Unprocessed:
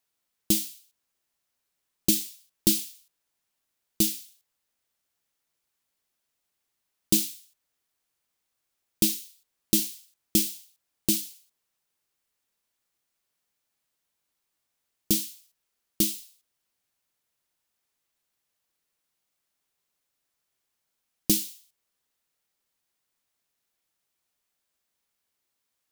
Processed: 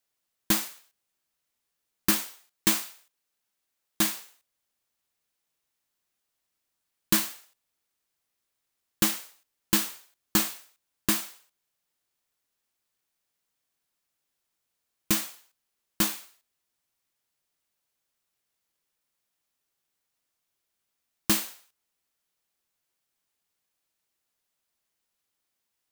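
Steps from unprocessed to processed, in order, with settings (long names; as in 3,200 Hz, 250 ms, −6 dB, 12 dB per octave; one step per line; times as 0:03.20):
samples in bit-reversed order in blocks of 32 samples
0:02.22–0:04.03: low-shelf EQ 180 Hz −5.5 dB
level −1 dB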